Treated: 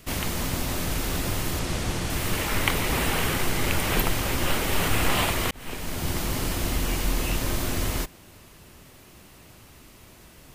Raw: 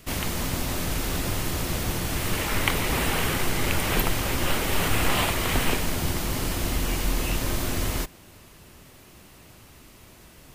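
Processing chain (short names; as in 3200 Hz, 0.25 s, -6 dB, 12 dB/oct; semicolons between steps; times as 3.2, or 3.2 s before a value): 1.59–2.1 LPF 9700 Hz 12 dB/oct; 5.51–6.18 fade in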